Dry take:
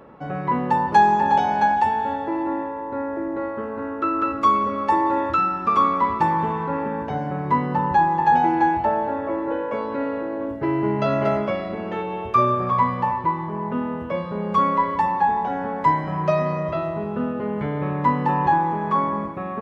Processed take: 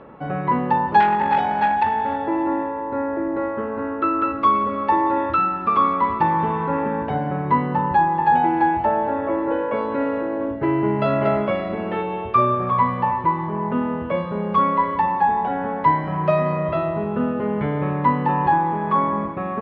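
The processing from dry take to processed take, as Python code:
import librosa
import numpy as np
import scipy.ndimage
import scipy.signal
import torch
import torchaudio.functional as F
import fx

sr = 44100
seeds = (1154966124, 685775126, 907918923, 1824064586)

p1 = scipy.signal.sosfilt(scipy.signal.butter(4, 3800.0, 'lowpass', fs=sr, output='sos'), x)
p2 = fx.rider(p1, sr, range_db=3, speed_s=0.5)
p3 = p1 + (p2 * 10.0 ** (-1.0 / 20.0))
p4 = fx.transformer_sat(p3, sr, knee_hz=990.0, at=(1.0, 2.26))
y = p4 * 10.0 ** (-4.0 / 20.0)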